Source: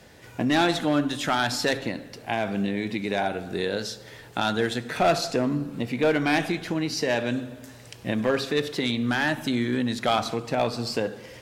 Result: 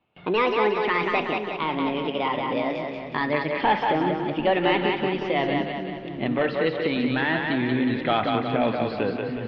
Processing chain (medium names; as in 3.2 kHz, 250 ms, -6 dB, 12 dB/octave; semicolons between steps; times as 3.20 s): gliding tape speed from 148% -> 93%; gate with hold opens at -38 dBFS; steep low-pass 3.4 kHz 36 dB/octave; on a send: two-band feedback delay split 330 Hz, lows 749 ms, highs 183 ms, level -3.5 dB